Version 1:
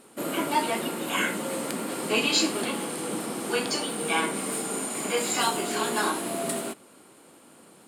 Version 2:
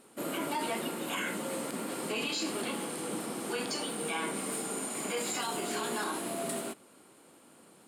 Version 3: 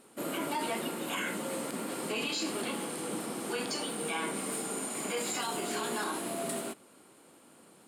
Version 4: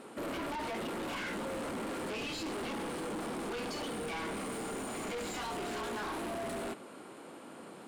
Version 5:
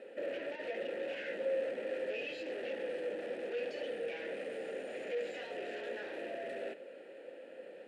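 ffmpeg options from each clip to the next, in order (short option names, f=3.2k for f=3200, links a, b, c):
-af "alimiter=limit=-19.5dB:level=0:latency=1:release=36,volume=-5dB"
-af anull
-filter_complex "[0:a]asplit=2[a][b];[b]highpass=f=720:p=1,volume=19dB,asoftclip=type=tanh:threshold=-24dB[c];[a][c]amix=inputs=2:normalize=0,lowpass=f=1.9k:p=1,volume=-6dB,lowshelf=f=350:g=10,asoftclip=type=tanh:threshold=-34dB,volume=-1.5dB"
-filter_complex "[0:a]asplit=3[a][b][c];[a]bandpass=f=530:t=q:w=8,volume=0dB[d];[b]bandpass=f=1.84k:t=q:w=8,volume=-6dB[e];[c]bandpass=f=2.48k:t=q:w=8,volume=-9dB[f];[d][e][f]amix=inputs=3:normalize=0,volume=9dB"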